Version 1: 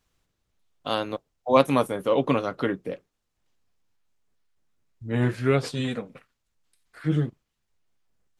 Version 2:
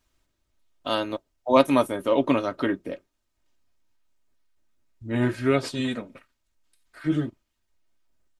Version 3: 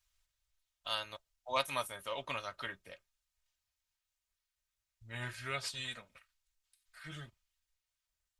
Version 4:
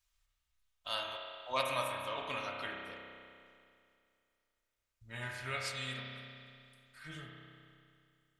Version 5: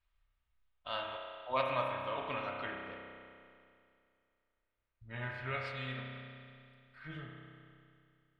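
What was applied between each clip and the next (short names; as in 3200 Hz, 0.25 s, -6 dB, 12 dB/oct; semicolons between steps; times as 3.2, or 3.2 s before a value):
comb 3.2 ms, depth 52%
passive tone stack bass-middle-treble 10-0-10; gain -3 dB
spring tank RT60 2.4 s, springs 31 ms, chirp 70 ms, DRR -0.5 dB; gain -1.5 dB
air absorption 400 m; gain +3.5 dB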